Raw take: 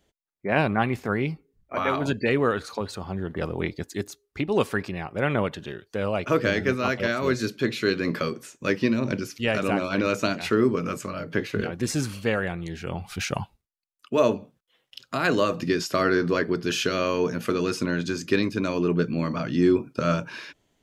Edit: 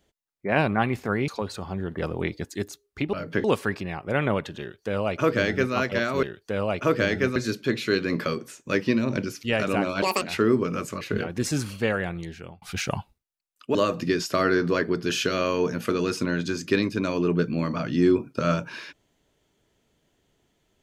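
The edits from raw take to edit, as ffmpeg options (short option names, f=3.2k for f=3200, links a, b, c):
-filter_complex "[0:a]asplit=11[a][b][c][d][e][f][g][h][i][j][k];[a]atrim=end=1.282[l];[b]atrim=start=2.668:end=4.522[m];[c]atrim=start=11.128:end=11.442[n];[d]atrim=start=4.518:end=7.312[o];[e]atrim=start=5.678:end=6.812[p];[f]atrim=start=7.308:end=9.974[q];[g]atrim=start=9.97:end=10.34,asetpts=PTS-STARTPTS,asetrate=82467,aresample=44100[r];[h]atrim=start=10.336:end=11.132[s];[i]atrim=start=11.438:end=13.05,asetpts=PTS-STARTPTS,afade=t=out:st=1.162:d=0.45[t];[j]atrim=start=13.05:end=14.182,asetpts=PTS-STARTPTS,afade=t=in:d=0.004:c=hsin[u];[k]atrim=start=15.348[v];[l][m]acrossfade=d=0.004:c1=hsin:c2=hsin[w];[w][n]acrossfade=d=0.004:c1=hsin:c2=hsin[x];[x][o]acrossfade=d=0.004:c1=hsin:c2=hsin[y];[y][p]acrossfade=d=0.004:c1=hsin:c2=hsin[z];[z][q]acrossfade=d=0.004:c1=hsin:c2=hsin[aa];[aa][r]acrossfade=d=0.004:c1=hsin:c2=hsin[ab];[ab][s]acrossfade=d=0.004:c1=hsin:c2=hsin[ac];[t][u]concat=n=2:v=0:a=1[ad];[ac][ad]acrossfade=d=0.004:c1=hsin:c2=hsin[ae];[ae][v]acrossfade=d=0.004:c1=hsin:c2=hsin"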